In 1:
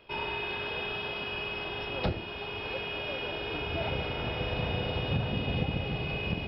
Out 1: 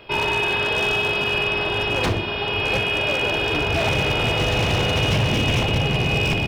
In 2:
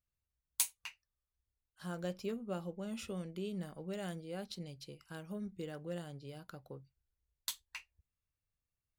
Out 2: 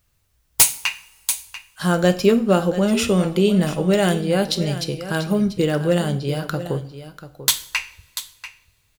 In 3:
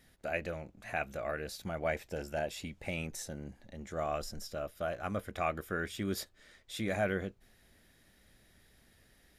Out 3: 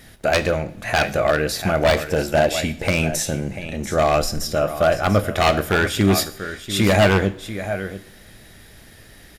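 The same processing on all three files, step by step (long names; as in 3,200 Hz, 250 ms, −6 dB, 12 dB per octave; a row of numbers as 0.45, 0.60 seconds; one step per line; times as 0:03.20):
single-tap delay 690 ms −13 dB
wave folding −27.5 dBFS
coupled-rooms reverb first 0.53 s, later 3.3 s, from −26 dB, DRR 10.5 dB
loudness normalisation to −20 LKFS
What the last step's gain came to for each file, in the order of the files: +12.5, +23.5, +18.5 decibels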